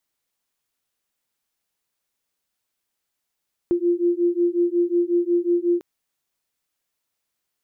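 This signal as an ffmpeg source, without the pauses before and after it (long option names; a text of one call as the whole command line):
ffmpeg -f lavfi -i "aevalsrc='0.0944*(sin(2*PI*345*t)+sin(2*PI*350.5*t))':duration=2.1:sample_rate=44100" out.wav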